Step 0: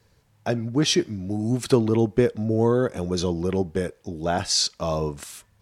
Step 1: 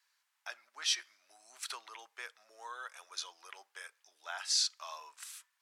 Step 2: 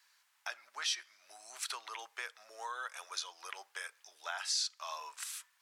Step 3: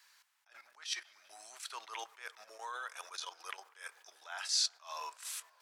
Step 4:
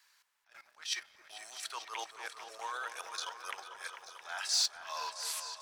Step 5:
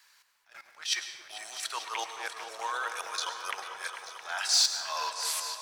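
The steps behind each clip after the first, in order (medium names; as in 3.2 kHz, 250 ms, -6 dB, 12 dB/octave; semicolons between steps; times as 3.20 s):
high-pass 1.1 kHz 24 dB/octave; trim -8 dB
peaking EQ 270 Hz -7.5 dB 0.72 oct; compression 2:1, threshold -48 dBFS, peak gain reduction 12 dB; trim +7.5 dB
level held to a coarse grid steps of 12 dB; feedback echo behind a low-pass 196 ms, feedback 79%, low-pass 1.8 kHz, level -23 dB; attacks held to a fixed rise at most 180 dB/s; trim +6 dB
waveshaping leveller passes 1; delay with an opening low-pass 222 ms, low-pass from 750 Hz, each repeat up 2 oct, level -6 dB; trim -1 dB
reverberation RT60 1.0 s, pre-delay 95 ms, DRR 9.5 dB; trim +6 dB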